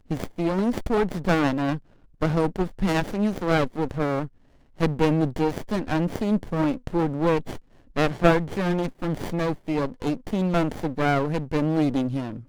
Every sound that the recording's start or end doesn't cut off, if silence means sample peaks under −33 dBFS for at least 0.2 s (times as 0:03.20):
0:02.22–0:04.27
0:04.80–0:07.58